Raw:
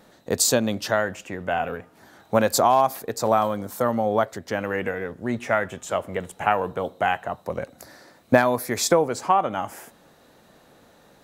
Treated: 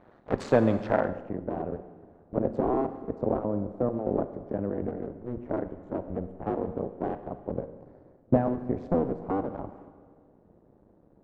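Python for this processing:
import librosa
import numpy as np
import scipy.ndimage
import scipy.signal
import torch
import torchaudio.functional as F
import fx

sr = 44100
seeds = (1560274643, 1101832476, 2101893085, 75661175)

p1 = fx.cycle_switch(x, sr, every=2, mode='muted')
p2 = np.clip(p1, -10.0 ** (-14.5 / 20.0), 10.0 ** (-14.5 / 20.0))
p3 = p1 + F.gain(torch.from_numpy(p2), -4.0).numpy()
p4 = fx.rev_schroeder(p3, sr, rt60_s=1.7, comb_ms=32, drr_db=10.5)
p5 = fx.filter_sweep_lowpass(p4, sr, from_hz=1300.0, to_hz=430.0, start_s=0.82, end_s=1.5, q=0.8)
y = F.gain(torch.from_numpy(p5), -3.0).numpy()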